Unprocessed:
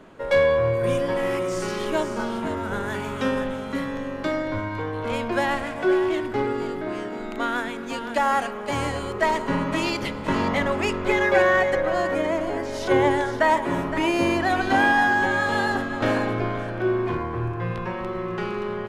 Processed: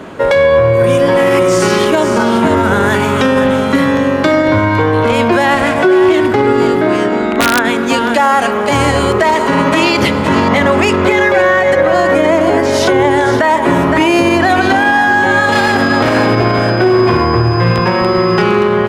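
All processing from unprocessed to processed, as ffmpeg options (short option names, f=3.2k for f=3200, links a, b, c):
-filter_complex "[0:a]asettb=1/sr,asplit=3[a][b][c];[a]atrim=end=7.064[d];[b]atrim=start=7.06:end=7.65,asetpts=PTS-STARTPTS,afade=t=in:d=0.004:c=qsin,afade=t=out:st=0.586:d=0.004:c=qsin,lowpass=8.8k,acrossover=split=3300[e][f];[f]acompressor=threshold=-56dB:ratio=4:attack=1:release=60[g];[e][g]amix=inputs=2:normalize=0,aeval=exprs='(mod(7.08*val(0)+1,2)-1)/7.08':c=same[h];[c]atrim=start=7.646[i];[d][h]acrossfade=d=0.004:c1=hsin:c2=qsin[j];[j][i]acrossfade=d=0.004:c1=qsin:c2=hsin,asettb=1/sr,asplit=3[k][l][m];[k]atrim=end=9.344[n];[l]atrim=start=9.34:end=9.98,asetpts=PTS-STARTPTS,afade=t=in:d=0.004:c=qsin,afade=t=out:st=0.636:d=0.004:c=qsin,acrossover=split=4100[o][p];[p]acompressor=threshold=-42dB:ratio=4:attack=1:release=60[q];[o][q]amix=inputs=2:normalize=0,bass=f=250:g=-6,treble=f=4k:g=2[r];[m]atrim=start=9.976[s];[n][r]acrossfade=d=0.004:c1=hsin:c2=qsin[t];[t][s]acrossfade=d=0.004:c1=qsin:c2=hsin,asettb=1/sr,asplit=3[u][v][w];[u]atrim=end=15.524[x];[v]atrim=start=15.52:end=18.42,asetpts=PTS-STARTPTS,afade=t=in:d=0.004:c=qsin,afade=t=out:st=2.896:d=0.004:c=qsin,aeval=exprs='clip(val(0),-1,0.0596)':c=same,aeval=exprs='val(0)+0.00631*sin(2*PI*5000*n/s)':c=same[y];[w]atrim=start=18.416[z];[x][y]acrossfade=d=0.004:c1=hsin:c2=qsin[aa];[aa][z]acrossfade=d=0.004:c1=qsin:c2=hsin,highpass=57,acompressor=threshold=-23dB:ratio=6,alimiter=level_in=19.5dB:limit=-1dB:release=50:level=0:latency=1,volume=-1dB"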